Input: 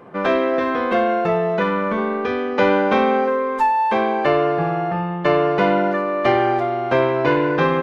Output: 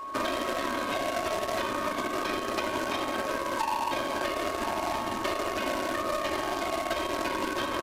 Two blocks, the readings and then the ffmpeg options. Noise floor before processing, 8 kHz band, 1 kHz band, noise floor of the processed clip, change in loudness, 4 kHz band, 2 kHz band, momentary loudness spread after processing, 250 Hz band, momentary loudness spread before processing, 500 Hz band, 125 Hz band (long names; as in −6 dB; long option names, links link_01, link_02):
−24 dBFS, can't be measured, −10.5 dB, −34 dBFS, −11.5 dB, −1.0 dB, −9.0 dB, 1 LU, −13.0 dB, 4 LU, −14.0 dB, −18.5 dB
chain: -filter_complex "[0:a]asplit=2[link_01][link_02];[link_02]aecho=0:1:1021:0.237[link_03];[link_01][link_03]amix=inputs=2:normalize=0,afftfilt=real='hypot(re,im)*cos(2*PI*random(0))':imag='hypot(re,im)*sin(2*PI*random(1))':win_size=512:overlap=0.75,alimiter=limit=-20dB:level=0:latency=1:release=134,bass=frequency=250:gain=-5,treble=frequency=4000:gain=12,aecho=1:1:3.2:0.89,aeval=exprs='0.2*(cos(1*acos(clip(val(0)/0.2,-1,1)))-cos(1*PI/2))+0.0141*(cos(7*acos(clip(val(0)/0.2,-1,1)))-cos(7*PI/2))':channel_layout=same,acrusher=bits=3:mode=log:mix=0:aa=0.000001,acrossover=split=160|970[link_04][link_05][link_06];[link_04]acompressor=threshold=-49dB:ratio=4[link_07];[link_05]acompressor=threshold=-36dB:ratio=4[link_08];[link_06]acompressor=threshold=-42dB:ratio=4[link_09];[link_07][link_08][link_09]amix=inputs=3:normalize=0,equalizer=frequency=4000:width_type=o:width=2.4:gain=7.5,aresample=32000,aresample=44100,acontrast=53,aeval=exprs='val(0)+0.0224*sin(2*PI*1100*n/s)':channel_layout=same,volume=-2.5dB"